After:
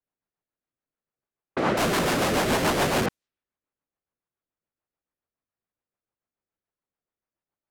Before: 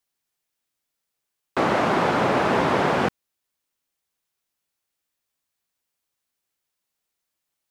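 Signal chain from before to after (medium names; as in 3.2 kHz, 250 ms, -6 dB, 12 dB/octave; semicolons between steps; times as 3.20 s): 1.77–3.06 s: Schmitt trigger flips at -32 dBFS; level-controlled noise filter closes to 1.3 kHz, open at -22.5 dBFS; rotary cabinet horn 7 Hz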